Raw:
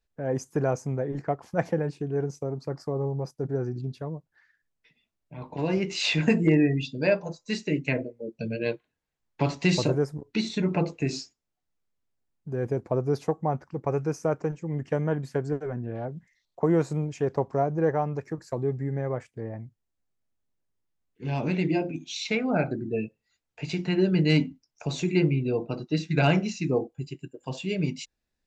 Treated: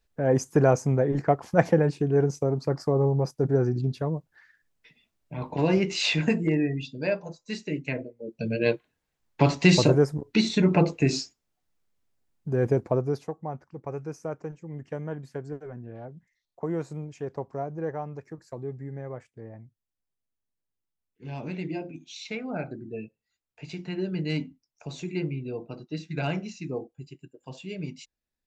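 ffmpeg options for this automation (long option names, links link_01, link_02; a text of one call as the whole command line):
ffmpeg -i in.wav -af "volume=15dB,afade=type=out:start_time=5.37:duration=1.05:silence=0.316228,afade=type=in:start_time=8.17:duration=0.51:silence=0.354813,afade=type=out:start_time=12.72:duration=0.54:silence=0.237137" out.wav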